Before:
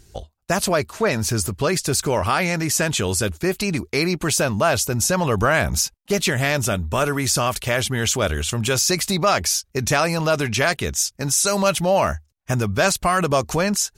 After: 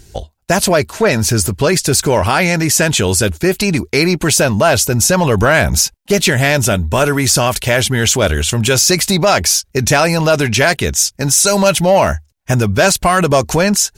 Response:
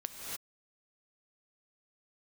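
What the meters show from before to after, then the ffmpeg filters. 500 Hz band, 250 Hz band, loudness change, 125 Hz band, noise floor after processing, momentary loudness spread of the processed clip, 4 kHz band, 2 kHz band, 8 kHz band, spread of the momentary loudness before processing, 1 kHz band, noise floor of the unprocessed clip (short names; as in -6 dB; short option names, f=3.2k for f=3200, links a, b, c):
+7.5 dB, +8.0 dB, +7.5 dB, +8.0 dB, -53 dBFS, 4 LU, +8.0 dB, +7.5 dB, +8.0 dB, 4 LU, +6.0 dB, -61 dBFS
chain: -af "bandreject=f=1.2k:w=8.1,acontrast=79,volume=1.5dB"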